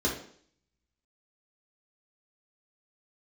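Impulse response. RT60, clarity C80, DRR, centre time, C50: 0.55 s, 10.5 dB, -4.0 dB, 32 ms, 5.5 dB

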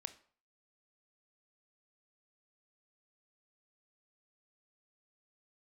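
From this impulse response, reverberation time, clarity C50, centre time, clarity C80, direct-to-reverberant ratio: 0.45 s, 15.5 dB, 5 ms, 19.5 dB, 11.0 dB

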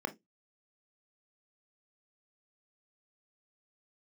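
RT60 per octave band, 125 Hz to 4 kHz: 0.25 s, 0.20 s, 0.20 s, 0.15 s, 0.15 s, 0.15 s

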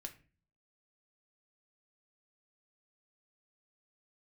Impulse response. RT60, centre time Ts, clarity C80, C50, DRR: 0.35 s, 8 ms, 19.0 dB, 14.0 dB, 3.5 dB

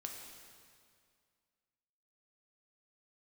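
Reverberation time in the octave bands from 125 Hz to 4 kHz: 2.2 s, 2.2 s, 2.1 s, 2.1 s, 2.0 s, 1.9 s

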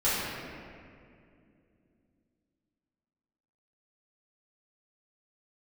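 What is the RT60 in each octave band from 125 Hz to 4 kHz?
3.6 s, 3.9 s, 2.8 s, 2.1 s, 2.1 s, 1.4 s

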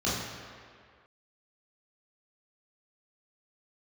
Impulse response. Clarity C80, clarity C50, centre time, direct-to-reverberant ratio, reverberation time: 2.5 dB, 0.0 dB, 99 ms, -9.0 dB, 2.0 s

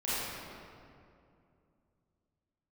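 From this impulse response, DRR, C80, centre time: -12.0 dB, -3.0 dB, 177 ms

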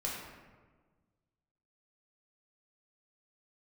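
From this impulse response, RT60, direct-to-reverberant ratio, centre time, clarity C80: 1.4 s, -4.5 dB, 71 ms, 3.0 dB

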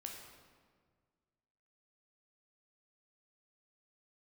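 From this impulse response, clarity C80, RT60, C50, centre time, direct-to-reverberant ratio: 5.0 dB, 1.7 s, 3.0 dB, 57 ms, 0.5 dB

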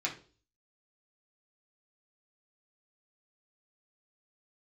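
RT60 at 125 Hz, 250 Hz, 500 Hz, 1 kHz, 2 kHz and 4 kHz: 0.60 s, 0.50 s, 0.45 s, 0.35 s, 0.30 s, 0.40 s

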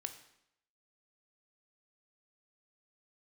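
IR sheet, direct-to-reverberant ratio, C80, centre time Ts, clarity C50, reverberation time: 7.0 dB, 13.0 dB, 11 ms, 11.0 dB, 0.75 s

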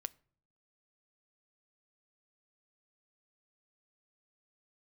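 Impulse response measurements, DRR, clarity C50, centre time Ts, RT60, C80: 16.0 dB, 25.0 dB, 2 ms, 0.55 s, 29.0 dB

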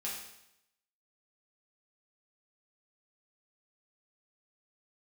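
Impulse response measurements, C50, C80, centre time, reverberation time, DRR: 3.0 dB, 5.5 dB, 51 ms, 0.80 s, -6.0 dB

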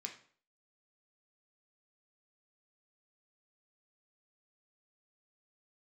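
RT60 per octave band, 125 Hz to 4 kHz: 0.50 s, 0.50 s, 0.50 s, 0.50 s, 0.45 s, 0.40 s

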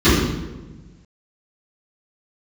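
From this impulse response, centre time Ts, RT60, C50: 83 ms, 1.2 s, -0.5 dB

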